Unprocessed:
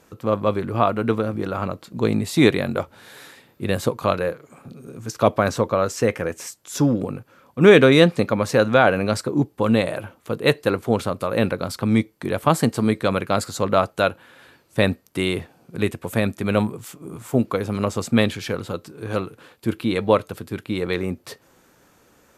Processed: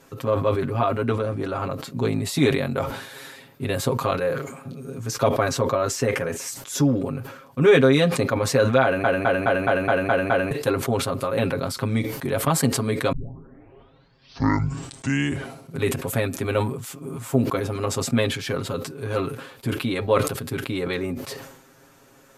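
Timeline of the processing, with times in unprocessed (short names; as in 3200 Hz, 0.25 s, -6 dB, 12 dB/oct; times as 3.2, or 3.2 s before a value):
1.06–1.59 brick-wall FIR low-pass 12000 Hz
8.83 stutter in place 0.21 s, 8 plays
13.12 tape start 2.71 s
whole clip: compressor 1.5:1, threshold -31 dBFS; comb 7.4 ms, depth 94%; sustainer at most 68 dB/s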